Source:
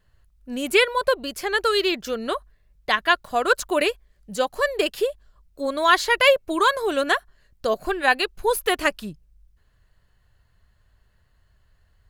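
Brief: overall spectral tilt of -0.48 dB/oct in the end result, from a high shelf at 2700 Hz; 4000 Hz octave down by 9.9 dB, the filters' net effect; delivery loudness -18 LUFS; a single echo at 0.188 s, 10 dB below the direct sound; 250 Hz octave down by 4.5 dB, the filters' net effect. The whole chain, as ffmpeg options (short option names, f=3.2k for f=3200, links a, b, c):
-af "equalizer=f=250:t=o:g=-6.5,highshelf=f=2.7k:g=-8.5,equalizer=f=4k:t=o:g=-7,aecho=1:1:188:0.316,volume=6.5dB"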